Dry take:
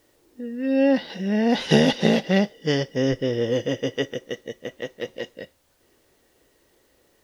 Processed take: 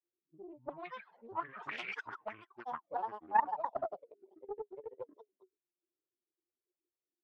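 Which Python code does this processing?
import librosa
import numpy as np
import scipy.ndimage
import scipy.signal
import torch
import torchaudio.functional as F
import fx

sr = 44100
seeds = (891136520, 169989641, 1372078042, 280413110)

y = fx.bin_expand(x, sr, power=1.5)
y = fx.high_shelf(y, sr, hz=2200.0, db=-11.5)
y = fx.small_body(y, sr, hz=(1100.0, 1800.0, 3100.0), ring_ms=45, db=9)
y = fx.granulator(y, sr, seeds[0], grain_ms=100.0, per_s=20.0, spray_ms=100.0, spread_st=12)
y = fx.auto_wah(y, sr, base_hz=350.0, top_hz=2300.0, q=15.0, full_db=-17.5, direction='up')
y = fx.doppler_dist(y, sr, depth_ms=0.31)
y = F.gain(torch.from_numpy(y), 6.0).numpy()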